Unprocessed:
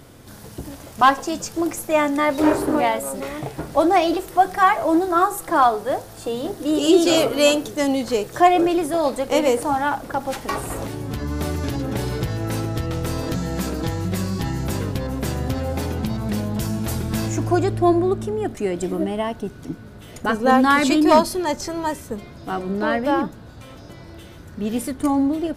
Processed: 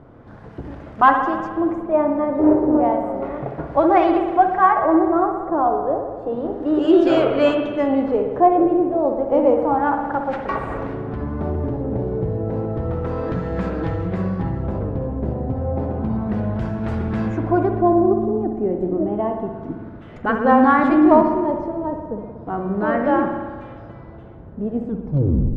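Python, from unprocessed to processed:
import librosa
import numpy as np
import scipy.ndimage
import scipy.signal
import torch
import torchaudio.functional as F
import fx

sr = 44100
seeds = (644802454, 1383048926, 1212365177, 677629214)

y = fx.tape_stop_end(x, sr, length_s=0.83)
y = fx.filter_lfo_lowpass(y, sr, shape='sine', hz=0.31, low_hz=620.0, high_hz=1700.0, q=1.0)
y = fx.rev_spring(y, sr, rt60_s=1.5, pass_ms=(59,), chirp_ms=60, drr_db=4.5)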